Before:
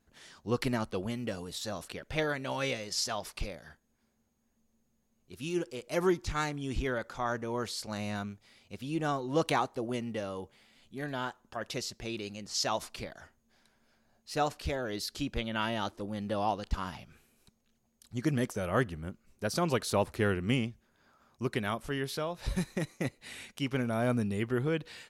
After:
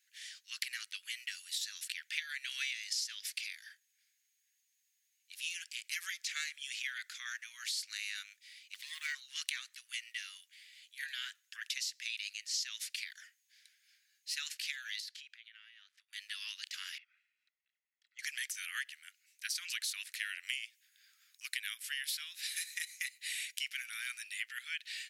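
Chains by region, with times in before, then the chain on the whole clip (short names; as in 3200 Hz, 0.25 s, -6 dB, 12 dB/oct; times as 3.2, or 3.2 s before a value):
8.74–9.15 block floating point 7-bit + ring modulator 770 Hz
15–16.13 elliptic high-pass 350 Hz + tilt -4.5 dB/oct + compressor 12:1, threshold -46 dBFS
16.98–18.19 LPF 1200 Hz + comb 1.5 ms, depth 54%
20.43–23.86 high shelf 6700 Hz +6.5 dB + notch 6100 Hz, Q 18
whole clip: steep high-pass 1800 Hz 48 dB/oct; compressor 6:1, threshold -41 dBFS; gain +6.5 dB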